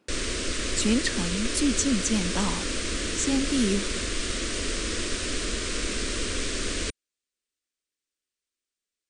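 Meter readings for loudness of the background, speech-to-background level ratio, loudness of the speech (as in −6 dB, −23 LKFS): −29.0 LKFS, 1.5 dB, −27.5 LKFS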